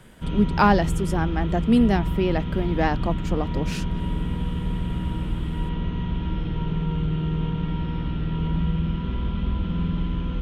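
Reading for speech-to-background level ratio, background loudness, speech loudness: 4.0 dB, -27.5 LUFS, -23.5 LUFS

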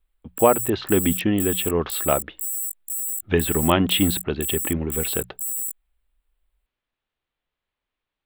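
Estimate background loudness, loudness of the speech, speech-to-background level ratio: -26.5 LUFS, -23.0 LUFS, 3.5 dB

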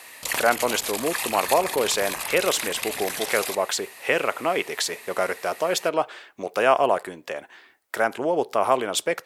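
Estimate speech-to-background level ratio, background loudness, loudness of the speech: 4.0 dB, -28.5 LUFS, -24.5 LUFS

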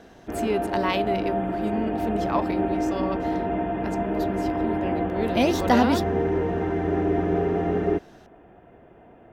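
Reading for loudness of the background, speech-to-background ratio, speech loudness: -26.5 LUFS, -1.5 dB, -28.0 LUFS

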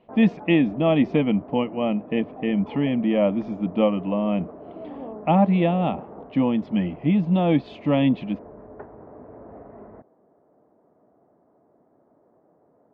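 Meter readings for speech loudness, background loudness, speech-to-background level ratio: -22.5 LUFS, -41.0 LUFS, 18.5 dB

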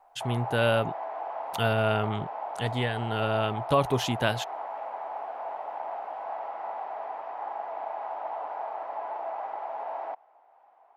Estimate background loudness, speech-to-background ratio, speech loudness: -36.0 LUFS, 8.0 dB, -28.0 LUFS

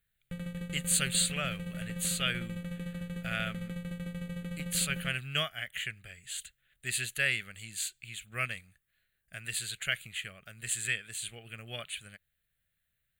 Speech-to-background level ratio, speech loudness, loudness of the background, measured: 6.5 dB, -33.5 LUFS, -40.0 LUFS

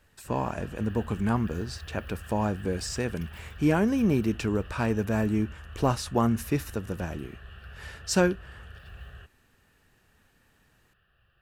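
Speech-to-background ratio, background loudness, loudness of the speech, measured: 16.5 dB, -45.0 LUFS, -28.5 LUFS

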